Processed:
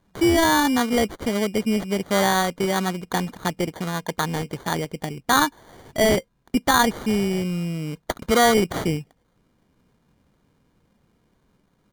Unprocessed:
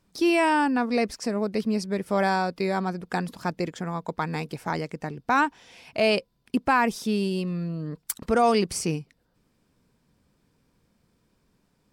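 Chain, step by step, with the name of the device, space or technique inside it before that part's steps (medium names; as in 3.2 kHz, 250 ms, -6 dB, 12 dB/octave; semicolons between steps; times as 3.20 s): crushed at another speed (playback speed 0.8×; sample-and-hold 21×; playback speed 1.25×); trim +3.5 dB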